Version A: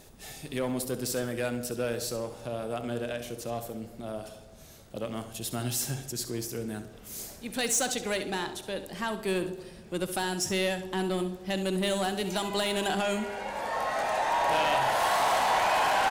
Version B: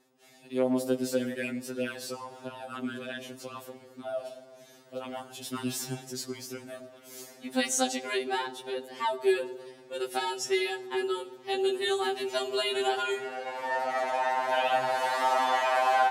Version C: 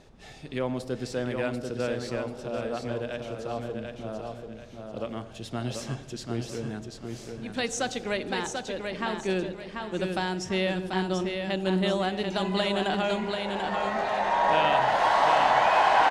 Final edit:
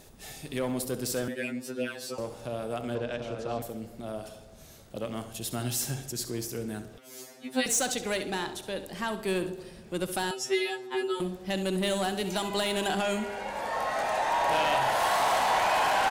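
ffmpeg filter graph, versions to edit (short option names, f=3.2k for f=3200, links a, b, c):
-filter_complex "[1:a]asplit=3[a][b][c];[0:a]asplit=5[d][e][f][g][h];[d]atrim=end=1.282[i];[a]atrim=start=1.278:end=2.182[j];[e]atrim=start=2.178:end=2.952[k];[2:a]atrim=start=2.948:end=3.622[l];[f]atrim=start=3.618:end=6.982[m];[b]atrim=start=6.978:end=7.662[n];[g]atrim=start=7.658:end=10.312[o];[c]atrim=start=10.308:end=11.202[p];[h]atrim=start=11.198[q];[i][j]acrossfade=d=0.004:c1=hsin:c2=hsin[r];[r][k]acrossfade=d=0.004:c1=hsin:c2=hsin[s];[s][l]acrossfade=d=0.004:c1=hsin:c2=hsin[t];[t][m]acrossfade=d=0.004:c1=hsin:c2=hsin[u];[u][n]acrossfade=d=0.004:c1=hsin:c2=hsin[v];[v][o]acrossfade=d=0.004:c1=hsin:c2=hsin[w];[w][p]acrossfade=d=0.004:c1=hsin:c2=hsin[x];[x][q]acrossfade=d=0.004:c1=hsin:c2=hsin"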